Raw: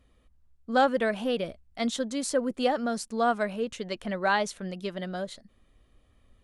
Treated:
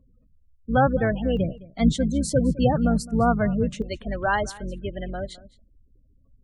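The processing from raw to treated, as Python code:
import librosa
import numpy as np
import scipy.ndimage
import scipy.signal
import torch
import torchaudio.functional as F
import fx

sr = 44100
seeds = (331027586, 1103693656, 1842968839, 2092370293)

y = fx.octave_divider(x, sr, octaves=2, level_db=1.0)
y = fx.spec_gate(y, sr, threshold_db=-20, keep='strong')
y = fx.peak_eq(y, sr, hz=170.0, db=fx.steps((0.0, 7.0), (1.37, 14.0), (3.82, -2.5)), octaves=0.9)
y = y + 10.0 ** (-20.5 / 20.0) * np.pad(y, (int(211 * sr / 1000.0), 0))[:len(y)]
y = F.gain(torch.from_numpy(y), 2.0).numpy()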